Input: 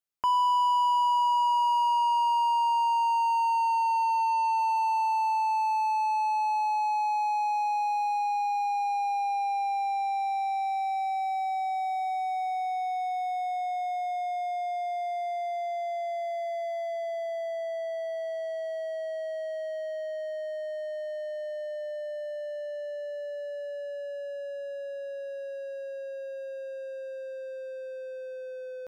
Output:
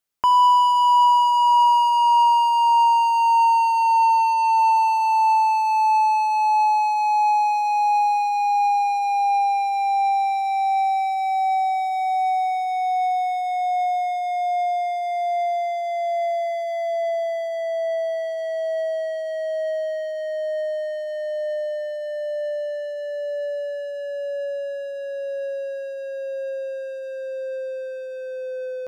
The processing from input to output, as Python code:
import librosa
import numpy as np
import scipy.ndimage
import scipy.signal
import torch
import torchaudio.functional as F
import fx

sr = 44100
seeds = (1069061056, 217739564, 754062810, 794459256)

p1 = x + fx.echo_single(x, sr, ms=76, db=-14.0, dry=0)
y = F.gain(torch.from_numpy(p1), 8.0).numpy()